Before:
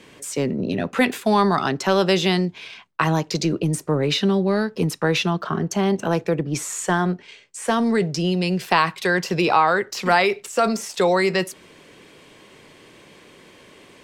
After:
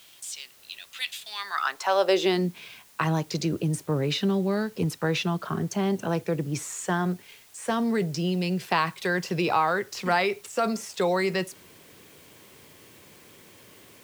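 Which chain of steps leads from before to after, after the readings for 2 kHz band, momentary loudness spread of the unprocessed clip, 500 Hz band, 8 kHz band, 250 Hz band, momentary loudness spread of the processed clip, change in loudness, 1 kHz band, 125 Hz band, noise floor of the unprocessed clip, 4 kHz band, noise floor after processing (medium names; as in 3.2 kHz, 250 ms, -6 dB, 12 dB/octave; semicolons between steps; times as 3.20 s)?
-6.5 dB, 7 LU, -6.0 dB, -6.0 dB, -6.0 dB, 12 LU, -6.0 dB, -6.5 dB, -4.5 dB, -49 dBFS, -6.0 dB, -53 dBFS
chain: high-pass sweep 3.4 kHz -> 86 Hz, 1.23–2.87 s; added noise white -49 dBFS; trim -6.5 dB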